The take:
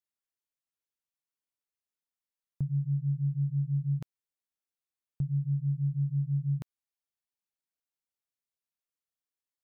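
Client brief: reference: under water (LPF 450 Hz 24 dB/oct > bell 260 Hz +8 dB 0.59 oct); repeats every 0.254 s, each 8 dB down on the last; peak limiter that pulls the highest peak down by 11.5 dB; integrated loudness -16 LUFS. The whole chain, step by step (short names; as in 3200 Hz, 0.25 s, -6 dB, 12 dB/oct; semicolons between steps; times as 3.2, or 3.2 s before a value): limiter -35 dBFS; LPF 450 Hz 24 dB/oct; bell 260 Hz +8 dB 0.59 oct; feedback echo 0.254 s, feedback 40%, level -8 dB; gain +23 dB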